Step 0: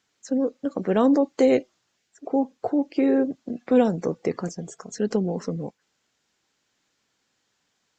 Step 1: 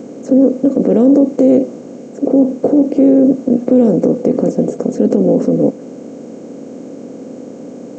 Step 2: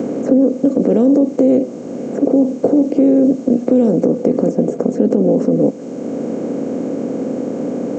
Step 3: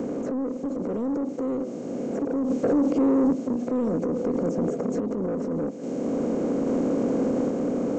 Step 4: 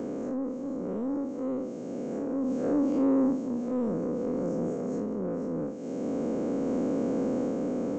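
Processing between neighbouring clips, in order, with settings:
per-bin compression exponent 0.4; ten-band EQ 125 Hz +5 dB, 250 Hz +11 dB, 500 Hz +9 dB, 1000 Hz -9 dB, 2000 Hz -6 dB, 4000 Hz -8 dB; limiter -1 dBFS, peak gain reduction 6.5 dB; gain -1 dB
three-band squash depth 70%; gain -2 dB
limiter -11.5 dBFS, peak gain reduction 9.5 dB; soft clip -15.5 dBFS, distortion -16 dB; random-step tremolo 1.2 Hz
time blur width 0.107 s; gain -3 dB

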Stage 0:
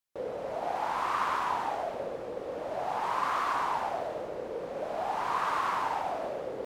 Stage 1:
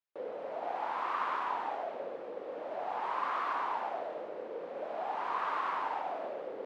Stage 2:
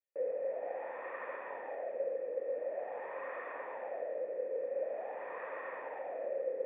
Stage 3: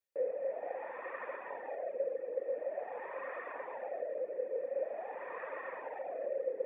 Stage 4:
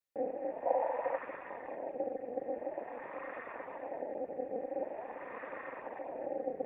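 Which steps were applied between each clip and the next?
three-band isolator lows -22 dB, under 210 Hz, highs -17 dB, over 4000 Hz; gain -4 dB
vocal tract filter e; gain +8.5 dB
reverb removal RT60 0.75 s; gain +2 dB
AM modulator 240 Hz, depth 65%; spectral gain 0.66–1.18, 470–1000 Hz +12 dB; gain +2 dB

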